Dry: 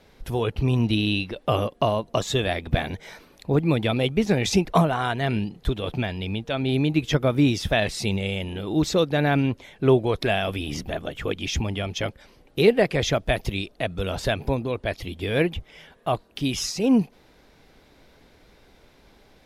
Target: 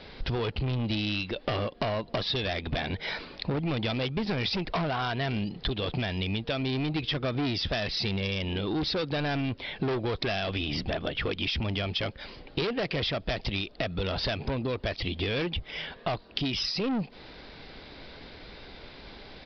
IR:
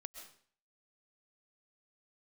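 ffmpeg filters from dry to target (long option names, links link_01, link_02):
-af "aresample=11025,asoftclip=type=tanh:threshold=-23dB,aresample=44100,highshelf=frequency=2600:gain=8,acompressor=threshold=-35dB:ratio=10,volume=7.5dB"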